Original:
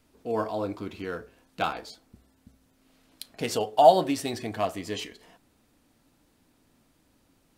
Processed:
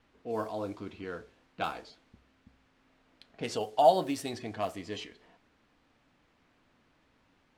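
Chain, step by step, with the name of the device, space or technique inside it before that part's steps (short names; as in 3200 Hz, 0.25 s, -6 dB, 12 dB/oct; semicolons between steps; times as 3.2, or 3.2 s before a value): cassette deck with a dynamic noise filter (white noise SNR 27 dB; low-pass opened by the level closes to 2100 Hz, open at -23 dBFS); gain -5.5 dB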